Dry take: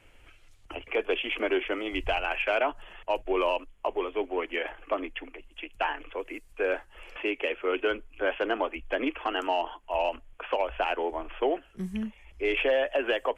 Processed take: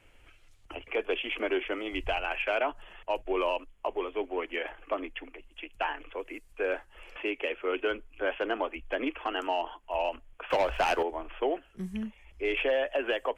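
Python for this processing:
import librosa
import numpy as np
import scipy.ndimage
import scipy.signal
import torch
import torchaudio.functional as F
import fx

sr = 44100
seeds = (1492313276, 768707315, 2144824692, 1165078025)

y = fx.leveller(x, sr, passes=2, at=(10.5, 11.03))
y = y * librosa.db_to_amplitude(-2.5)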